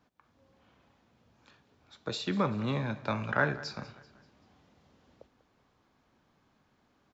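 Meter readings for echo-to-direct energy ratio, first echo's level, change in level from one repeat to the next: -17.5 dB, -18.5 dB, -7.0 dB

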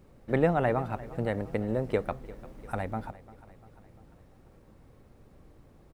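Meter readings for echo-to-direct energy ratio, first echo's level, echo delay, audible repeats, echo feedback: -17.5 dB, -19.0 dB, 347 ms, 4, 56%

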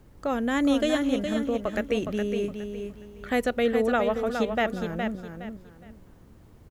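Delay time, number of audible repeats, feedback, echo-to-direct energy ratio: 415 ms, 3, 27%, -6.0 dB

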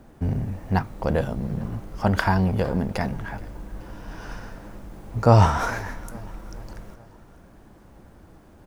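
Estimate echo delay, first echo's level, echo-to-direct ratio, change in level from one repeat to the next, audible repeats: 426 ms, -22.0 dB, -20.5 dB, -5.5 dB, 3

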